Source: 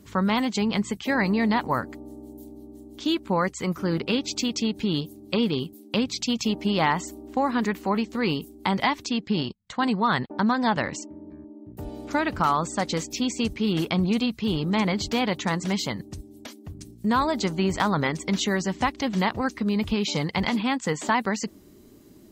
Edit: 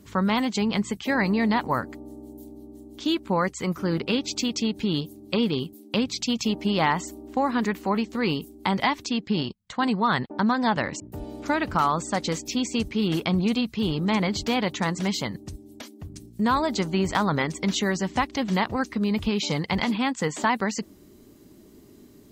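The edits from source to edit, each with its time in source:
11.00–11.65 s: delete

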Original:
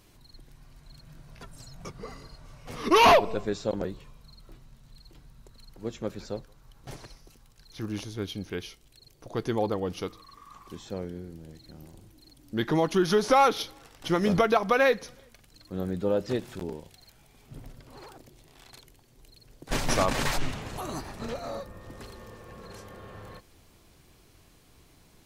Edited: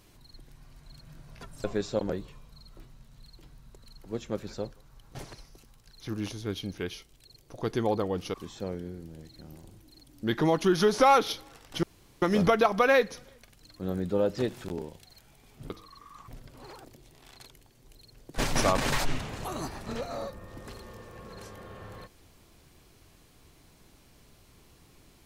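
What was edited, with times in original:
1.64–3.36 s: delete
10.06–10.64 s: move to 17.61 s
14.13 s: insert room tone 0.39 s

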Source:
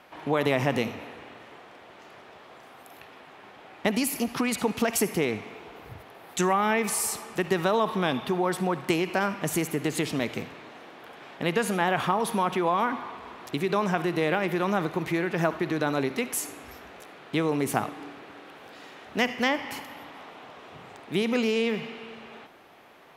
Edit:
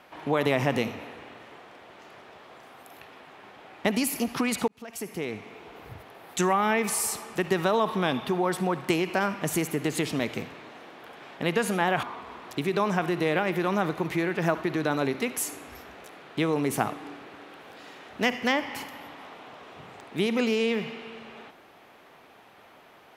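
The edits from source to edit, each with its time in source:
4.68–5.84 s: fade in
12.03–12.99 s: delete

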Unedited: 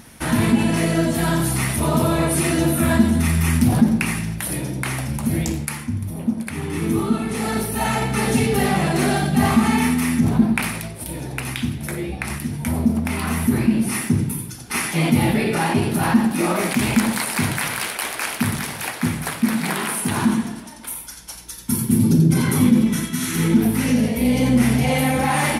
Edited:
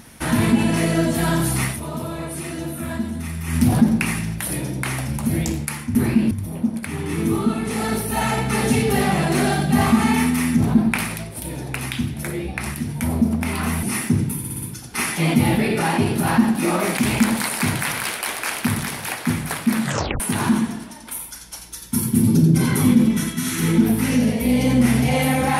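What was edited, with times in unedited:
1.64–3.62 s: dip -10 dB, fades 0.16 s
13.47–13.83 s: move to 5.95 s
14.38 s: stutter 0.06 s, 5 plays
19.58 s: tape stop 0.38 s

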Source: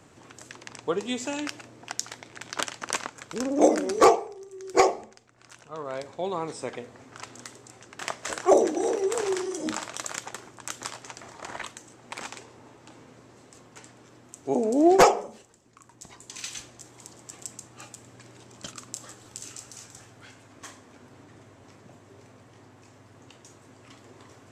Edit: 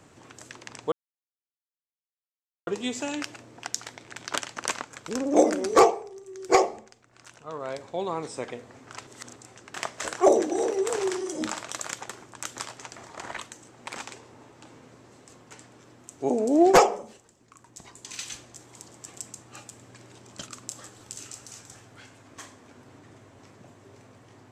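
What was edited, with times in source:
0.92 s: insert silence 1.75 s
7.32–7.61 s: reverse

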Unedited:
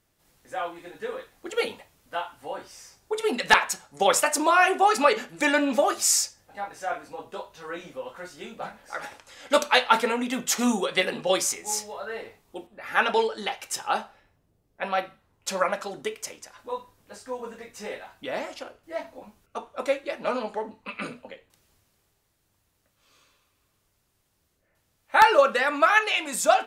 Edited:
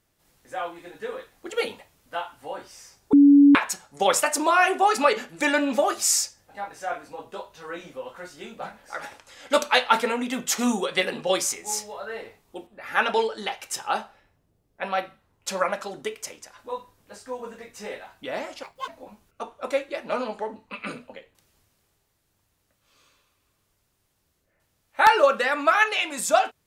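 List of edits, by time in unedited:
3.13–3.55 s: bleep 284 Hz -9.5 dBFS
18.63–19.03 s: speed 161%

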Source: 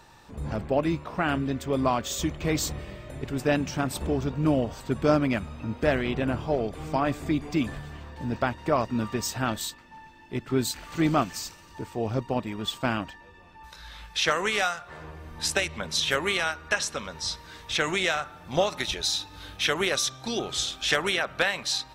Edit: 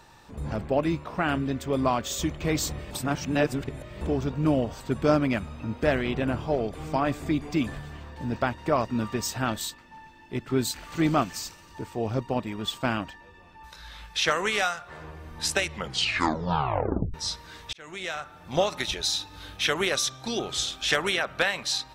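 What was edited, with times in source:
2.91–4.01 s: reverse
15.68 s: tape stop 1.46 s
17.73–18.57 s: fade in

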